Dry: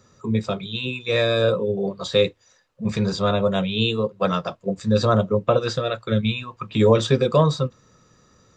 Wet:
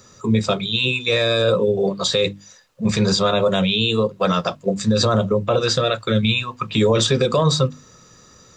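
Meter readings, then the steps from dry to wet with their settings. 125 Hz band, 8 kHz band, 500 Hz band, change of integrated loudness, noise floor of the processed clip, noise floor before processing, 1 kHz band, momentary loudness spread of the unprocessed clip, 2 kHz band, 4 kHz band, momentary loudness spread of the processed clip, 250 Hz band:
+1.5 dB, +11.5 dB, +1.5 dB, +3.0 dB, −49 dBFS, −59 dBFS, +2.5 dB, 9 LU, +5.0 dB, +7.0 dB, 5 LU, +2.5 dB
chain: high-shelf EQ 3,400 Hz +8.5 dB
mains-hum notches 50/100/150/200/250/300 Hz
brickwall limiter −14 dBFS, peak gain reduction 10.5 dB
level +6 dB

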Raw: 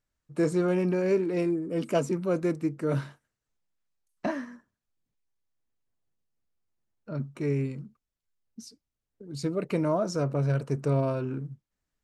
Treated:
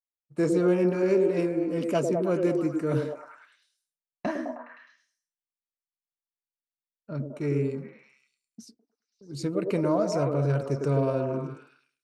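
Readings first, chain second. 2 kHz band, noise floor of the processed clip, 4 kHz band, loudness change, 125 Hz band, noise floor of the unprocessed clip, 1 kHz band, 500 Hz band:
+0.5 dB, below −85 dBFS, 0.0 dB, +2.0 dB, 0.0 dB, below −85 dBFS, +1.5 dB, +3.0 dB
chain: downward expander −40 dBFS
echo through a band-pass that steps 104 ms, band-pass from 390 Hz, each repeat 0.7 octaves, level −0.5 dB

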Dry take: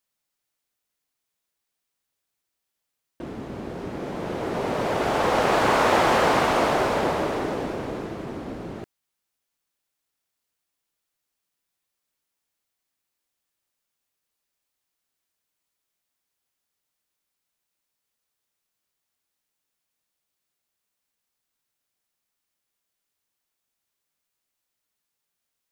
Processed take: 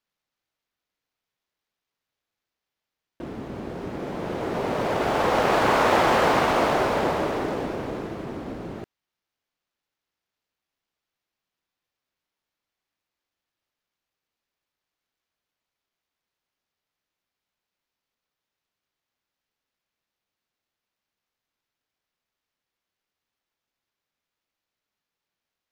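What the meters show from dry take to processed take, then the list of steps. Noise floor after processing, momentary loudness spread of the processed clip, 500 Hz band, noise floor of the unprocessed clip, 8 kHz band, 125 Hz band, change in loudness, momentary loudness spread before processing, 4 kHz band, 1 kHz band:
below −85 dBFS, 16 LU, 0.0 dB, −82 dBFS, −2.5 dB, 0.0 dB, 0.0 dB, 16 LU, −1.0 dB, 0.0 dB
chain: running median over 5 samples

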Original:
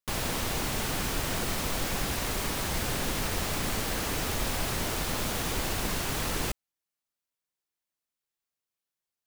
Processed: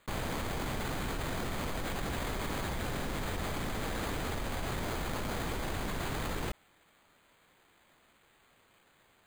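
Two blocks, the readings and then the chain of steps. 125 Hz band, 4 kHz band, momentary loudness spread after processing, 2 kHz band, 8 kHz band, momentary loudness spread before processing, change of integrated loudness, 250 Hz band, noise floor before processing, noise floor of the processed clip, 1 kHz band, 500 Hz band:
−3.0 dB, −9.0 dB, 1 LU, −5.0 dB, −12.0 dB, 0 LU, −6.0 dB, −3.0 dB, below −85 dBFS, −67 dBFS, −3.5 dB, −3.0 dB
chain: bad sample-rate conversion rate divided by 8×, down filtered, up hold
envelope flattener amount 100%
level −7.5 dB

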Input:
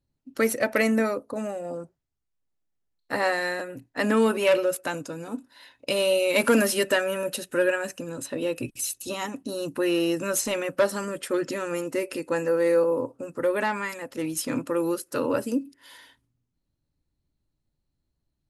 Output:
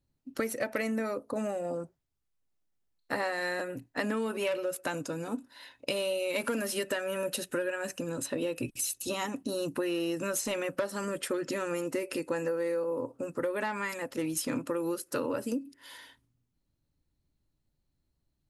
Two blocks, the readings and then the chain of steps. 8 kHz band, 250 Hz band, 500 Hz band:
−4.5 dB, −6.5 dB, −7.5 dB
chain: downward compressor 12 to 1, threshold −28 dBFS, peak gain reduction 13.5 dB

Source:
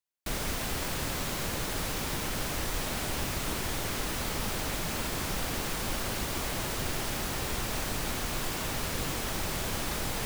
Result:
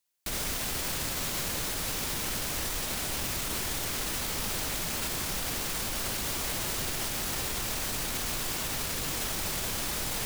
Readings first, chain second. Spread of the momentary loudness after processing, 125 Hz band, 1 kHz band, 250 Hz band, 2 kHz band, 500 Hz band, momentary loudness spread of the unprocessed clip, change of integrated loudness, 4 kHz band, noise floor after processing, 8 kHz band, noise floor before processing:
0 LU, −3.5 dB, −2.0 dB, −3.0 dB, −0.5 dB, −3.0 dB, 0 LU, +2.0 dB, +2.0 dB, −33 dBFS, +4.0 dB, −34 dBFS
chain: high-shelf EQ 2,700 Hz +7.5 dB
brickwall limiter −27.5 dBFS, peak gain reduction 11.5 dB
level +4.5 dB

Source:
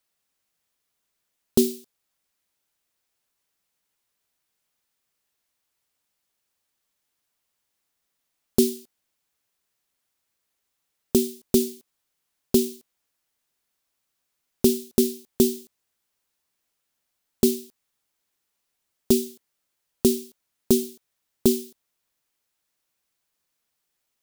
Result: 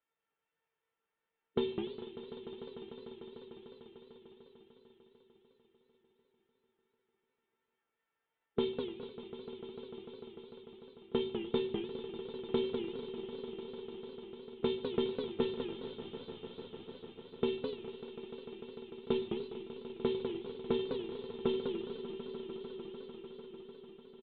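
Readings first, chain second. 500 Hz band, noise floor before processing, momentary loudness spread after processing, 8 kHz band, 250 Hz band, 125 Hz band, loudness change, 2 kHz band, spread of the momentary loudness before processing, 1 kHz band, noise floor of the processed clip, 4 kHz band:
−8.0 dB, −79 dBFS, 16 LU, below −40 dB, −13.5 dB, −10.0 dB, −16.0 dB, −0.5 dB, 9 LU, +1.5 dB, below −85 dBFS, −7.5 dB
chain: high-pass filter 140 Hz 6 dB per octave
low-pass that shuts in the quiet parts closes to 2,100 Hz
harmonic and percussive parts rebalanced percussive +4 dB
in parallel at −2 dB: brickwall limiter −12 dBFS, peak gain reduction 9 dB
on the sum: soft clipping −10 dBFS, distortion −12 dB
tuned comb filter 450 Hz, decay 0.19 s, harmonics all, mix 90%
on a send: echo that builds up and dies away 149 ms, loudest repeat 5, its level −14.5 dB
on the sum: rectangular room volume 680 cubic metres, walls furnished, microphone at 0.7 metres
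downsampling to 8,000 Hz
feedback echo with a swinging delay time 206 ms, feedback 32%, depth 199 cents, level −6 dB
level +3 dB

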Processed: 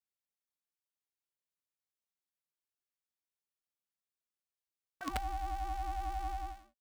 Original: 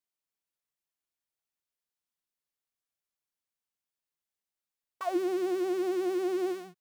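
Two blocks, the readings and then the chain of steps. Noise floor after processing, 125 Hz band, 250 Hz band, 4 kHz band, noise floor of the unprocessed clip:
below −85 dBFS, can't be measured, −19.5 dB, −4.5 dB, below −85 dBFS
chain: fade-out on the ending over 0.50 s
ring modulation 410 Hz
wrap-around overflow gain 21.5 dB
level −4.5 dB

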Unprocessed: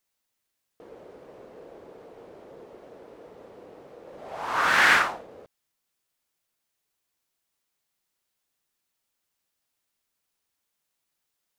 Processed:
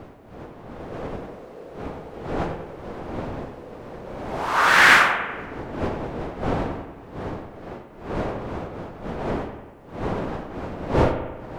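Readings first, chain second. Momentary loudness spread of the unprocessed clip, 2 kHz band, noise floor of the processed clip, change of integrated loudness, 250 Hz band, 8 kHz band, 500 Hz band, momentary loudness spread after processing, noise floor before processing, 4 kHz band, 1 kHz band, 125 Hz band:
19 LU, +6.0 dB, −43 dBFS, −2.0 dB, +18.0 dB, +5.0 dB, +13.0 dB, 21 LU, −81 dBFS, +5.5 dB, +6.5 dB, +23.5 dB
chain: wind on the microphone 590 Hz −36 dBFS
bucket-brigade delay 95 ms, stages 2,048, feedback 58%, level −9 dB
level +5 dB

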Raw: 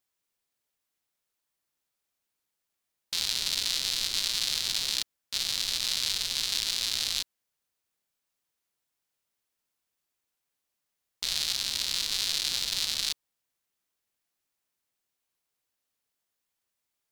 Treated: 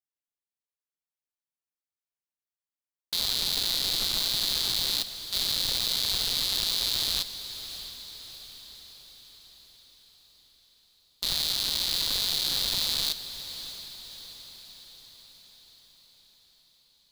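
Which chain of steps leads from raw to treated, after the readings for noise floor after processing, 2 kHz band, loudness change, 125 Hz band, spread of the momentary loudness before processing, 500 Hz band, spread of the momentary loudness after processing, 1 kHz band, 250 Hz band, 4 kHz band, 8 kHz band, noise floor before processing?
below −85 dBFS, −2.0 dB, +1.5 dB, +7.0 dB, 5 LU, +7.0 dB, 18 LU, +4.0 dB, +7.0 dB, +2.5 dB, −1.0 dB, −84 dBFS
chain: leveller curve on the samples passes 5
feedback delay with all-pass diffusion 651 ms, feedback 55%, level −12 dB
level −7 dB

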